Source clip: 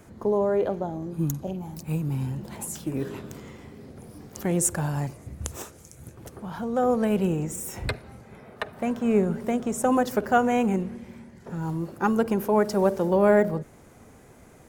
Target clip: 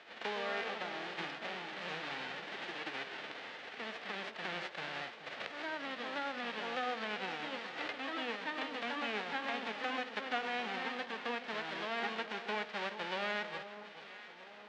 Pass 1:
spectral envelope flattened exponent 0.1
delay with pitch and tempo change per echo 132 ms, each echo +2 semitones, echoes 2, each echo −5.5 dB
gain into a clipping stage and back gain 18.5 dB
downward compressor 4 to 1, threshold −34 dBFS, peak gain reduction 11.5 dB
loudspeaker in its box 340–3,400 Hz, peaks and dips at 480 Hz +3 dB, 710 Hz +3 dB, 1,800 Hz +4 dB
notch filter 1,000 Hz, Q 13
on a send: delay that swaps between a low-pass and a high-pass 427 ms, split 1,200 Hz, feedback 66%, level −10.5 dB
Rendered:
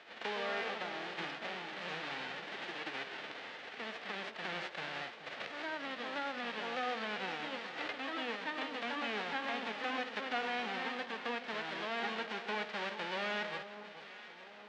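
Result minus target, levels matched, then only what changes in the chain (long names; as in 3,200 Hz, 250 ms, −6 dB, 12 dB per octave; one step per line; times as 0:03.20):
gain into a clipping stage and back: distortion +25 dB
change: gain into a clipping stage and back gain 7.5 dB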